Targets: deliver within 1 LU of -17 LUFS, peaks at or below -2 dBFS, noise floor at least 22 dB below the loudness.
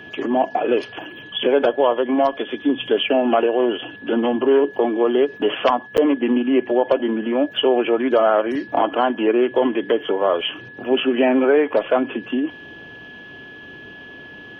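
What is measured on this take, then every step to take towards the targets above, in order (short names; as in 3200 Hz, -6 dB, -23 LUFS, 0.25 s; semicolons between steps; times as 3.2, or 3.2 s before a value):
dropouts 1; longest dropout 8.2 ms; steady tone 1700 Hz; tone level -38 dBFS; loudness -19.5 LUFS; peak -5.0 dBFS; loudness target -17.0 LUFS
-> interpolate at 5.97, 8.2 ms; notch 1700 Hz, Q 30; gain +2.5 dB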